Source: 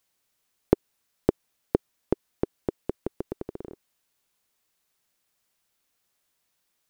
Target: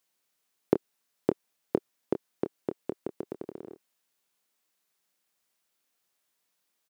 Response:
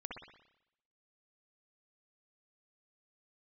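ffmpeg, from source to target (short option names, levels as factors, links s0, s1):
-filter_complex "[0:a]highpass=160,asplit=2[s0][s1];[s1]adelay=26,volume=0.316[s2];[s0][s2]amix=inputs=2:normalize=0,volume=0.708"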